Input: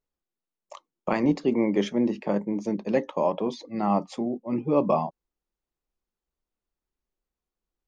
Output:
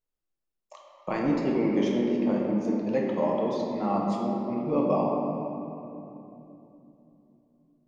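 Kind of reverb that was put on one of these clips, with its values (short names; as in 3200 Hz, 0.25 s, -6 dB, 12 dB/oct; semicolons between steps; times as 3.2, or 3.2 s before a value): shoebox room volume 140 m³, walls hard, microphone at 0.56 m; gain -6 dB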